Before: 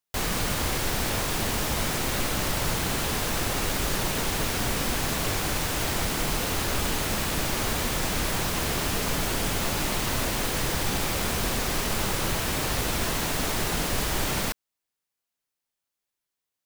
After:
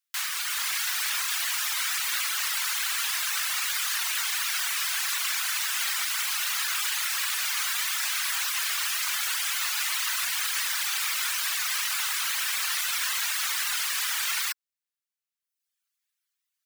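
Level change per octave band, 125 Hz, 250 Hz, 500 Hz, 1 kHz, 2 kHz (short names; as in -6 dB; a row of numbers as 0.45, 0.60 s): under -40 dB, under -40 dB, -26.5 dB, -5.0 dB, +2.0 dB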